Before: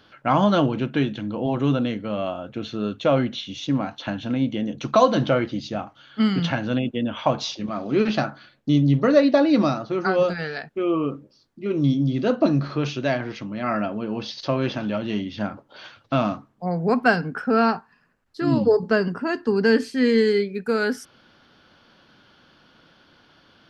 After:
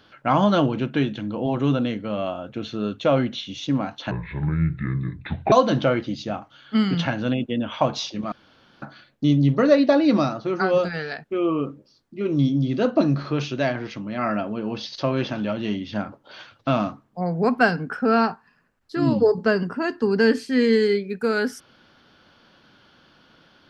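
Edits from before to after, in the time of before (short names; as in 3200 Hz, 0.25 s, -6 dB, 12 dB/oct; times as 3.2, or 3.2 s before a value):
4.11–4.97 speed 61%
7.77–8.27 room tone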